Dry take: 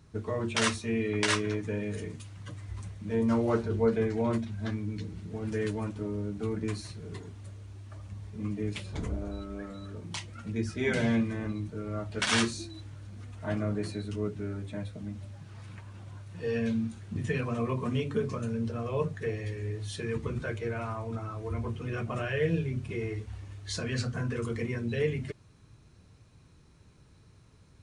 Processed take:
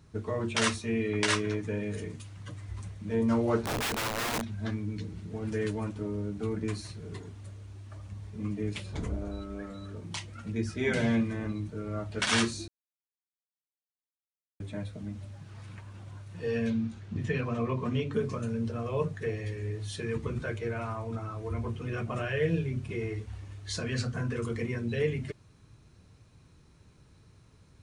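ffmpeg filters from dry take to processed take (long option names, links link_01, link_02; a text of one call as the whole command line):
ffmpeg -i in.wav -filter_complex "[0:a]asettb=1/sr,asplit=3[link_01][link_02][link_03];[link_01]atrim=end=3.644[link_04];[link_02]atrim=start=3.64:end=4.6,asetpts=PTS-STARTPTS,afade=type=in:duration=0.004:curve=qsin,afade=type=out:start_time=0.956:duration=0.004:curve=qsin,aeval=exprs='(mod(21.1*val(0)+1,2)-1)/21.1':channel_layout=same[link_05];[link_03]atrim=start=4.596[link_06];[link_04][link_05]acrossfade=duration=0.004:curve1=hsin:curve2=qsin[link_07];[link_07][link_06]acrossfade=duration=0.004:curve1=qsin:curve2=hsin,asettb=1/sr,asplit=3[link_08][link_09][link_10];[link_08]atrim=end=16.704[link_11];[link_09]atrim=start=16.7:end=18.13,asetpts=PTS-STARTPTS,afade=type=in:duration=0.004:curve=qsin,afade=type=out:start_time=1.426:duration=0.004:curve=qsin,lowpass=5900[link_12];[link_10]atrim=start=18.126[link_13];[link_11][link_12]acrossfade=duration=0.004:curve1=hsin:curve2=qsin[link_14];[link_14][link_13]acrossfade=duration=0.004:curve1=qsin:curve2=hsin,asplit=3[link_15][link_16][link_17];[link_15]atrim=end=12.68,asetpts=PTS-STARTPTS,afade=type=out:start_time=12.676:duration=0.004:curve=hsin[link_18];[link_16]atrim=start=12.68:end=14.6,asetpts=PTS-STARTPTS,volume=0[link_19];[link_17]atrim=start=14.6,asetpts=PTS-STARTPTS,afade=type=in:duration=0.004:curve=hsin[link_20];[link_18][link_19][link_20]concat=n=3:v=0:a=1" out.wav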